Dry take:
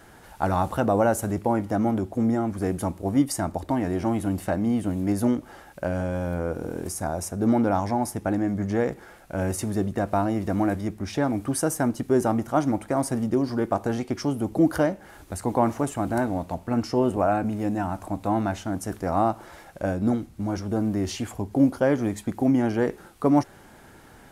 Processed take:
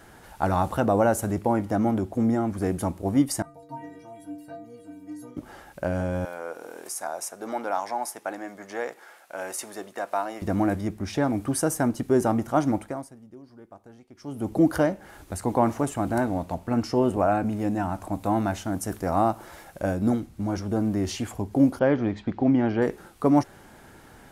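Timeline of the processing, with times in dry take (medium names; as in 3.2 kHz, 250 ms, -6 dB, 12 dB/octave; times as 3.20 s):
3.42–5.37 s: inharmonic resonator 140 Hz, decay 0.78 s, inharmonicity 0.03
6.25–10.42 s: high-pass 660 Hz
12.78–14.49 s: dip -23 dB, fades 0.40 s quadratic
18.12–20.20 s: treble shelf 9.2 kHz +7.5 dB
21.79–22.82 s: low-pass 4.3 kHz 24 dB/octave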